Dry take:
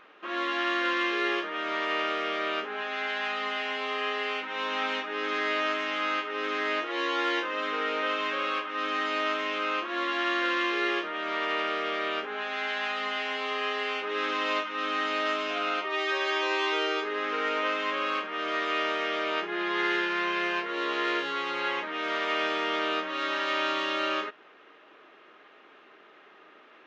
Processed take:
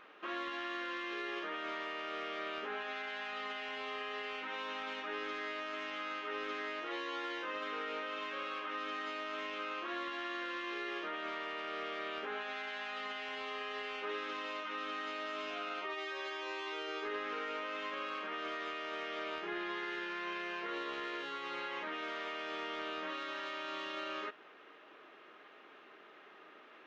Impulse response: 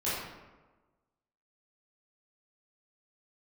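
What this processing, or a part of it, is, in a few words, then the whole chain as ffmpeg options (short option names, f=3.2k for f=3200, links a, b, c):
de-esser from a sidechain: -filter_complex "[0:a]asplit=2[a][b];[b]highpass=f=5.8k:p=1,apad=whole_len=1184930[c];[a][c]sidechaincompress=threshold=-45dB:ratio=10:attack=3.5:release=51,volume=-3dB"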